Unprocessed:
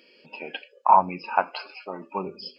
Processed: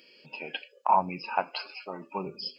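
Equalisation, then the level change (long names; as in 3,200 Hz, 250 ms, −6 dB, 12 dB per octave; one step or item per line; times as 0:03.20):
dynamic equaliser 1,300 Hz, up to −6 dB, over −32 dBFS, Q 1.3
parametric band 140 Hz +12 dB 0.32 octaves
high-shelf EQ 2,900 Hz +8.5 dB
−4.0 dB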